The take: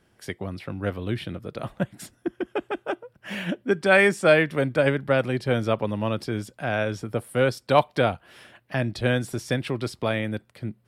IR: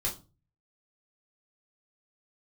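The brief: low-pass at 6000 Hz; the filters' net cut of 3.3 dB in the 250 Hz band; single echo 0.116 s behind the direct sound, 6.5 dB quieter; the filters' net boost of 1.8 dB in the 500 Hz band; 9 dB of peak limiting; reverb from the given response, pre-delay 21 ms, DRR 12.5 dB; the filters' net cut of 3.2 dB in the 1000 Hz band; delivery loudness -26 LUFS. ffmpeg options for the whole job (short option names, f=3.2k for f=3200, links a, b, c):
-filter_complex "[0:a]lowpass=6k,equalizer=f=250:t=o:g=-6,equalizer=f=500:t=o:g=5.5,equalizer=f=1k:t=o:g=-7,alimiter=limit=-14dB:level=0:latency=1,aecho=1:1:116:0.473,asplit=2[a][b];[1:a]atrim=start_sample=2205,adelay=21[c];[b][c]afir=irnorm=-1:irlink=0,volume=-17dB[d];[a][d]amix=inputs=2:normalize=0,volume=0.5dB"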